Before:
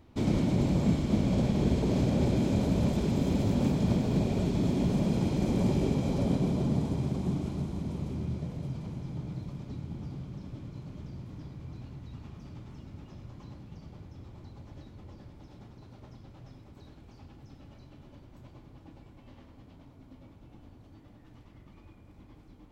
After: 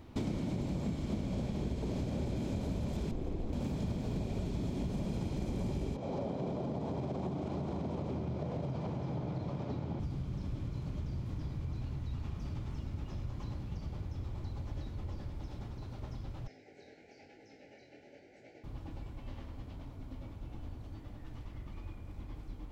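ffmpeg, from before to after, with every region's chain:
ffmpeg -i in.wav -filter_complex "[0:a]asettb=1/sr,asplit=3[link_01][link_02][link_03];[link_01]atrim=end=3.114[link_04];[link_02]atrim=start=3.11:end=3.53,asetpts=PTS-STARTPTS,afade=type=in:duration=0.004:curve=qsin,afade=type=out:start_time=0.416:duration=0.004:curve=qsin,highshelf=frequency=3500:gain=-11.5,aeval=exprs='val(0)*sin(2*PI*110*n/s)':channel_layout=same[link_05];[link_03]atrim=start=3.526[link_06];[link_04][link_05]acrossfade=duration=0.004:curve1=hsin:curve2=qsin[link_07];[link_07][link_06]acrossfade=duration=0.004:curve1=qsin:curve2=hsin,asettb=1/sr,asplit=3[link_08][link_09][link_10];[link_08]atrim=end=5.964[link_11];[link_09]atrim=start=5.96:end=10,asetpts=PTS-STARTPTS,afade=type=in:duration=0.004:curve=qsin,afade=type=out:start_time=4.036:duration=0.004:curve=qsin,equalizer=frequency=650:width_type=o:width=1.8:gain=10.5,acompressor=threshold=-30dB:ratio=5:attack=3.2:release=140:knee=1:detection=peak,highpass=110,lowpass=5600[link_12];[link_10]atrim=start=9.996[link_13];[link_11][link_12]acrossfade=duration=0.004:curve1=hsin:curve2=qsin[link_14];[link_14][link_13]acrossfade=duration=0.004:curve1=qsin:curve2=hsin,asettb=1/sr,asplit=3[link_15][link_16][link_17];[link_15]atrim=end=16.474[link_18];[link_16]atrim=start=16.47:end=18.64,asetpts=PTS-STARTPTS,afade=type=in:duration=0.004:curve=qsin,afade=type=out:start_time=2.166:duration=0.004:curve=qsin,flanger=delay=18.5:depth=6.1:speed=1,asuperstop=centerf=1100:order=8:qfactor=1.7,highpass=370,equalizer=frequency=450:width_type=q:width=4:gain=8,equalizer=frequency=1100:width_type=q:width=4:gain=4,equalizer=frequency=2100:width_type=q:width=4:gain=9,equalizer=frequency=3400:width_type=q:width=4:gain=-9,lowpass=frequency=7100:width=0.5412,lowpass=frequency=7100:width=1.3066[link_19];[link_17]atrim=start=18.636[link_20];[link_18][link_19]acrossfade=duration=0.004:curve1=hsin:curve2=qsin[link_21];[link_21][link_20]acrossfade=duration=0.004:curve1=qsin:curve2=hsin,asubboost=boost=2.5:cutoff=95,acompressor=threshold=-38dB:ratio=6,volume=4.5dB" out.wav

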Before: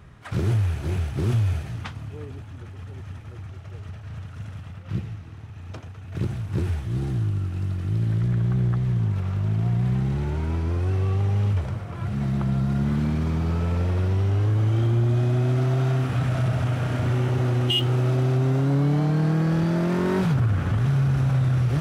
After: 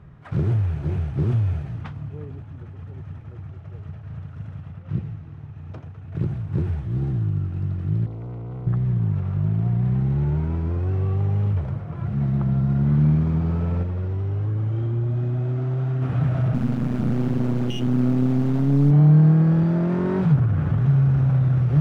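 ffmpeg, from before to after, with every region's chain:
ffmpeg -i in.wav -filter_complex "[0:a]asettb=1/sr,asplit=3[link_01][link_02][link_03];[link_01]atrim=end=8.064[link_04];[link_02]atrim=start=8.06:end=8.67,asetpts=PTS-STARTPTS,afade=type=in:duration=0.004:curve=qsin,afade=type=out:start_time=0.606:duration=0.004:curve=qsin,asoftclip=type=hard:threshold=-32.5dB,asuperstop=centerf=1700:order=8:qfactor=6.3[link_05];[link_03]atrim=start=8.666[link_06];[link_04][link_05]acrossfade=duration=0.004:curve1=hsin:curve2=qsin[link_07];[link_07][link_06]acrossfade=duration=0.004:curve1=qsin:curve2=hsin,asettb=1/sr,asplit=3[link_08][link_09][link_10];[link_08]atrim=end=13.834[link_11];[link_09]atrim=start=13.83:end=16.02,asetpts=PTS-STARTPTS,afade=type=in:duration=0.004:curve=qsin,afade=type=out:start_time=2.186:duration=0.004:curve=qsin,bandreject=frequency=700:width=15,flanger=delay=0.4:depth=2.8:regen=-65:speed=1.4:shape=triangular[link_12];[link_10]atrim=start=16.016[link_13];[link_11][link_12]acrossfade=duration=0.004:curve1=hsin:curve2=qsin[link_14];[link_14][link_13]acrossfade=duration=0.004:curve1=qsin:curve2=hsin,asettb=1/sr,asplit=3[link_15][link_16][link_17];[link_15]atrim=end=16.544[link_18];[link_16]atrim=start=16.54:end=18.91,asetpts=PTS-STARTPTS,afade=type=in:duration=0.004:curve=qsin,afade=type=out:start_time=2.366:duration=0.004:curve=qsin,acrusher=bits=3:dc=4:mix=0:aa=0.000001,equalizer=frequency=230:width=2.1:gain=12[link_19];[link_17]atrim=start=18.906[link_20];[link_18][link_19]acrossfade=duration=0.004:curve1=hsin:curve2=qsin[link_21];[link_21][link_20]acrossfade=duration=0.004:curve1=qsin:curve2=hsin,lowpass=frequency=1100:poles=1,equalizer=frequency=150:width_type=o:width=0.21:gain=10" out.wav

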